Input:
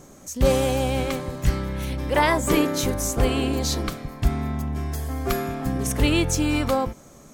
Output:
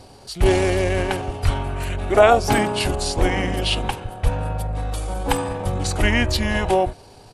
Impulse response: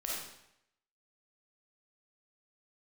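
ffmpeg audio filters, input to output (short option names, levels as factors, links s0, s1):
-af "equalizer=f=125:t=o:w=1:g=5,equalizer=f=250:t=o:w=1:g=-7,equalizer=f=1000:t=o:w=1:g=9,equalizer=f=4000:t=o:w=1:g=6,equalizer=f=8000:t=o:w=1:g=-5,equalizer=f=16000:t=o:w=1:g=5,asetrate=31183,aresample=44100,atempo=1.41421,volume=1.19"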